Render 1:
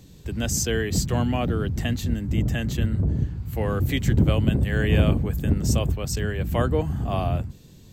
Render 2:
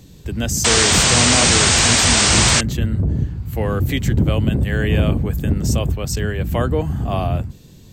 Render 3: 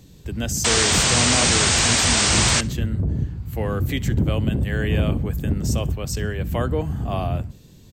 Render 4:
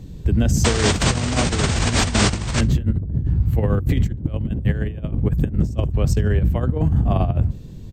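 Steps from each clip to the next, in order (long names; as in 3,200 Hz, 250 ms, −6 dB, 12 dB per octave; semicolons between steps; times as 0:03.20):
in parallel at −0.5 dB: brickwall limiter −15.5 dBFS, peak gain reduction 8.5 dB; on the sum: sound drawn into the spectrogram noise, 0:00.64–0:02.61, 200–8,900 Hz −14 dBFS; level −1 dB
repeating echo 65 ms, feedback 43%, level −24 dB; level −4 dB
spectral tilt −2.5 dB per octave; compressor whose output falls as the input rises −18 dBFS, ratio −0.5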